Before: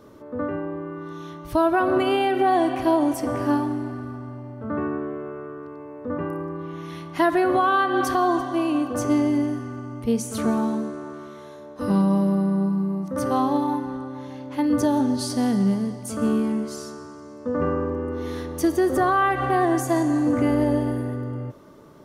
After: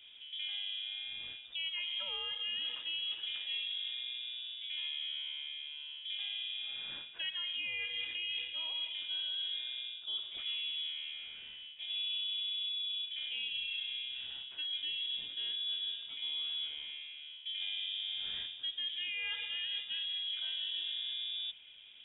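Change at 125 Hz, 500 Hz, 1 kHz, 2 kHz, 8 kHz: under -40 dB, under -40 dB, under -35 dB, -10.5 dB, under -40 dB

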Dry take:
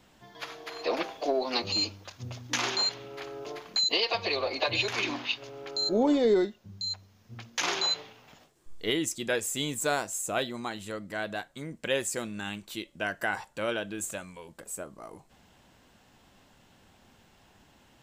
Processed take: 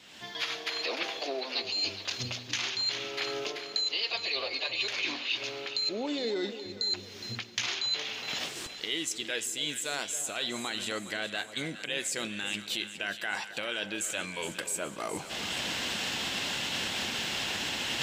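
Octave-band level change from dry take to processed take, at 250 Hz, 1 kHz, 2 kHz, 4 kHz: -6.0 dB, -4.0 dB, +1.0 dB, +1.5 dB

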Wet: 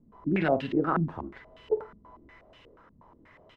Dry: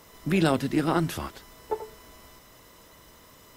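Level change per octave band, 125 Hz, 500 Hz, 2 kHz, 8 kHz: -3.5 dB, +0.5 dB, -2.0 dB, under -30 dB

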